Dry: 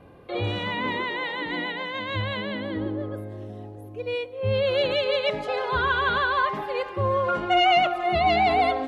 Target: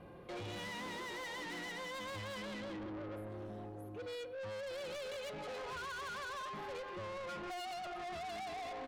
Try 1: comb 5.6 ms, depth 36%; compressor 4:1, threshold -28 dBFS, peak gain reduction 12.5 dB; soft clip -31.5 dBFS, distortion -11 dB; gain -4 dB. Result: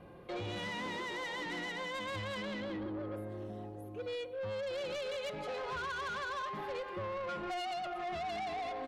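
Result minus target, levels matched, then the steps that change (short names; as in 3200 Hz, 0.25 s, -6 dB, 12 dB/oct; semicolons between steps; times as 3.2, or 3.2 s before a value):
soft clip: distortion -4 dB
change: soft clip -38 dBFS, distortion -6 dB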